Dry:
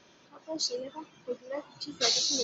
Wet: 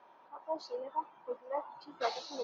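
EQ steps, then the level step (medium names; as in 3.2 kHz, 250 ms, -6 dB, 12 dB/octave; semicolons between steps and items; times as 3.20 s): band-pass filter 890 Hz, Q 3.9; distance through air 110 m; +10.5 dB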